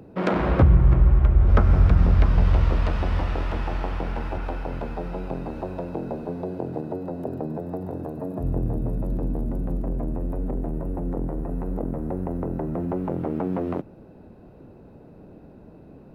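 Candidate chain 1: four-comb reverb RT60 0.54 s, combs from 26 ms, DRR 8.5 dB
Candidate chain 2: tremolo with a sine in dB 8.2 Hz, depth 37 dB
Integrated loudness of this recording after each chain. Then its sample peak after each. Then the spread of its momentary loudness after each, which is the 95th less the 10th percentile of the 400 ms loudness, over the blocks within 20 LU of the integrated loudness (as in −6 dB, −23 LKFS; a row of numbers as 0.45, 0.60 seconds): −24.5, −32.0 LKFS; −5.5, −7.0 dBFS; 14, 14 LU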